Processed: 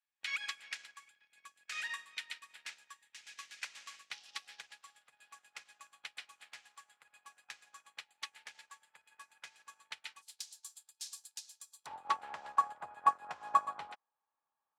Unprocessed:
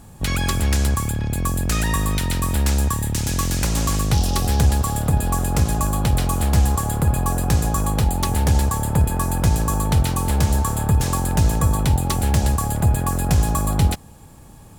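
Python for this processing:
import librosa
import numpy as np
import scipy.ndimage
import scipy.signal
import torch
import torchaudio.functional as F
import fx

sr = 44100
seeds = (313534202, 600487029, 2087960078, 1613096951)

y = fx.ladder_bandpass(x, sr, hz=fx.steps((0.0, 2600.0), (10.21, 5500.0), (11.85, 1300.0)), resonance_pct=35)
y = fx.upward_expand(y, sr, threshold_db=-55.0, expansion=2.5)
y = F.gain(torch.from_numpy(y), 10.5).numpy()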